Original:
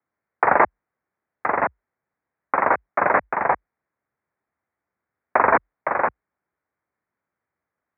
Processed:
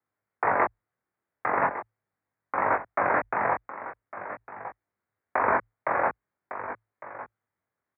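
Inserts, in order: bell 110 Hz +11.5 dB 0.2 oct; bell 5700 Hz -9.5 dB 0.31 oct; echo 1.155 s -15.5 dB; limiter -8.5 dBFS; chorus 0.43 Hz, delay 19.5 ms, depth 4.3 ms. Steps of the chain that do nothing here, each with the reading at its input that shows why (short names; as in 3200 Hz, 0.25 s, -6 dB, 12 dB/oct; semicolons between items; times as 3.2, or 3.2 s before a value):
bell 5700 Hz: input band ends at 2600 Hz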